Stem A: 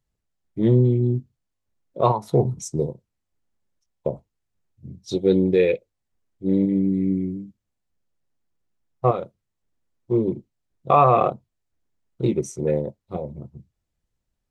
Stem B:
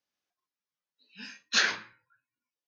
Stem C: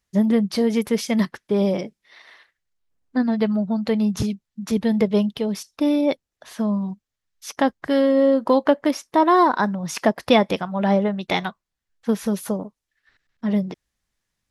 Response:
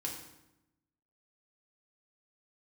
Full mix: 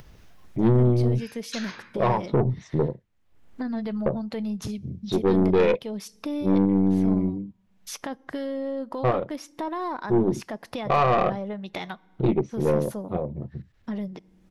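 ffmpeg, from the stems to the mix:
-filter_complex "[0:a]lowpass=f=3400:w=0.5412,lowpass=f=3400:w=1.3066,alimiter=limit=0.335:level=0:latency=1:release=109,volume=1.41[s0];[1:a]alimiter=limit=0.112:level=0:latency=1,acompressor=threshold=0.0282:ratio=6,volume=0.75[s1];[2:a]dynaudnorm=f=300:g=9:m=3.76,alimiter=limit=0.335:level=0:latency=1:release=34,adelay=450,volume=0.2,asplit=2[s2][s3];[s3]volume=0.0668[s4];[3:a]atrim=start_sample=2205[s5];[s4][s5]afir=irnorm=-1:irlink=0[s6];[s0][s1][s2][s6]amix=inputs=4:normalize=0,aeval=exprs='(tanh(5.01*val(0)+0.4)-tanh(0.4))/5.01':c=same,acompressor=mode=upward:threshold=0.0447:ratio=2.5"

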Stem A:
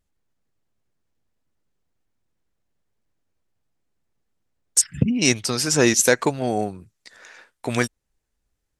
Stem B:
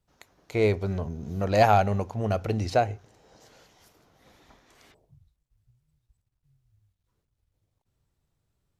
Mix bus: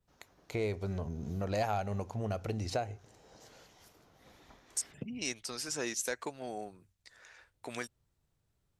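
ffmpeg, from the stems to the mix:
-filter_complex "[0:a]highpass=f=380:p=1,acompressor=threshold=0.0251:ratio=1.5,volume=0.282[s0];[1:a]adynamicequalizer=threshold=0.00316:dfrequency=8200:dqfactor=0.82:tfrequency=8200:tqfactor=0.82:attack=5:release=100:ratio=0.375:range=3:mode=boostabove:tftype=bell,acompressor=threshold=0.0224:ratio=2.5,volume=0.794[s1];[s0][s1]amix=inputs=2:normalize=0"

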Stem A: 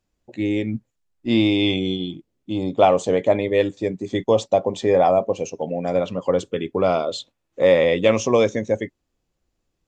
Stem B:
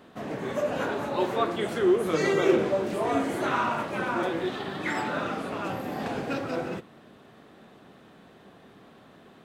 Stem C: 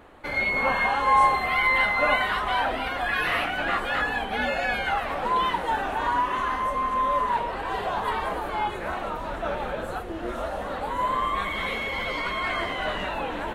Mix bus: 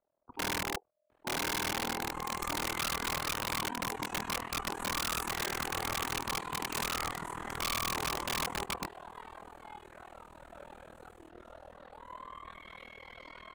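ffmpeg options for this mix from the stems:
-filter_complex "[0:a]lowpass=1200,equalizer=f=91:w=5.2:g=-7.5,volume=0.841[s0];[1:a]highshelf=f=6200:t=q:w=3:g=8.5,adelay=1850,volume=2.82,afade=t=out:st=3.01:d=0.65:silence=0.281838,afade=t=in:st=4.53:d=0.52:silence=0.298538[s1];[2:a]adelay=1100,volume=0.133[s2];[s0][s1]amix=inputs=2:normalize=0,aeval=exprs='val(0)*sin(2*PI*610*n/s)':c=same,alimiter=limit=0.133:level=0:latency=1:release=30,volume=1[s3];[s2][s3]amix=inputs=2:normalize=0,acrossover=split=290|3000[s4][s5][s6];[s4]acompressor=threshold=0.0178:ratio=6[s7];[s7][s5][s6]amix=inputs=3:normalize=0,tremolo=f=40:d=0.974,aeval=exprs='(mod(21.1*val(0)+1,2)-1)/21.1':c=same"

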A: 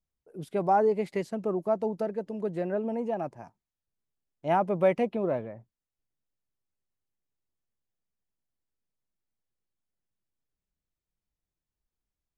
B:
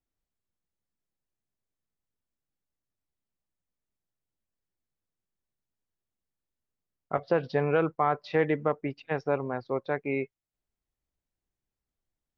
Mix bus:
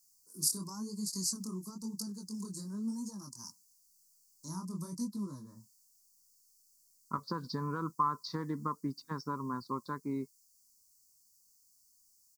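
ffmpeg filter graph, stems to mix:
-filter_complex "[0:a]acrossover=split=260[s0][s1];[s1]acompressor=threshold=0.00891:ratio=3[s2];[s0][s2]amix=inputs=2:normalize=0,aexciter=amount=13.2:drive=8:freq=4400,flanger=delay=19.5:depth=7.6:speed=0.97,volume=0.447[s3];[1:a]acompressor=threshold=0.0501:ratio=3,volume=0.531[s4];[s3][s4]amix=inputs=2:normalize=0,firequalizer=gain_entry='entry(110,0);entry(220,9);entry(450,-9);entry(720,-22);entry(1000,13);entry(1500,-2);entry(2600,-26);entry(4500,15);entry(7100,14);entry(10000,10)':delay=0.05:min_phase=1"

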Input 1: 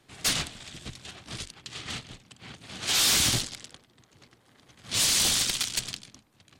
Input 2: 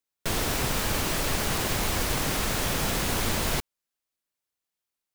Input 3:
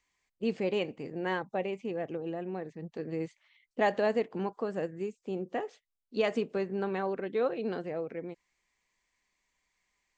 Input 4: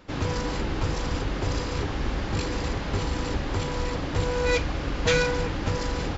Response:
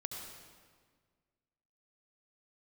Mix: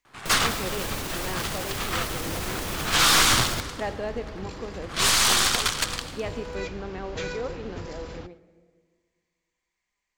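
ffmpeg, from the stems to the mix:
-filter_complex "[0:a]aeval=exprs='if(lt(val(0),0),0.447*val(0),val(0))':c=same,equalizer=f=1200:t=o:w=1.5:g=14,adelay=50,volume=1.06,asplit=2[s0][s1];[s1]volume=0.562[s2];[1:a]alimiter=limit=0.106:level=0:latency=1:release=49,volume=0.75[s3];[2:a]volume=0.473,asplit=2[s4][s5];[s5]volume=0.473[s6];[3:a]adelay=2100,volume=0.266,asplit=3[s7][s8][s9];[s8]volume=0.0708[s10];[s9]volume=0.1[s11];[4:a]atrim=start_sample=2205[s12];[s2][s6][s10]amix=inputs=3:normalize=0[s13];[s13][s12]afir=irnorm=-1:irlink=0[s14];[s11]aecho=0:1:115:1[s15];[s0][s3][s4][s7][s14][s15]amix=inputs=6:normalize=0"

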